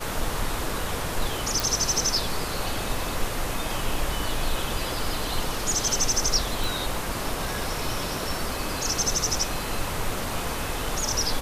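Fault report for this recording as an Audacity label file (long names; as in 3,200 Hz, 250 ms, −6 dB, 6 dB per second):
1.600000	1.600000	click
6.640000	6.640000	click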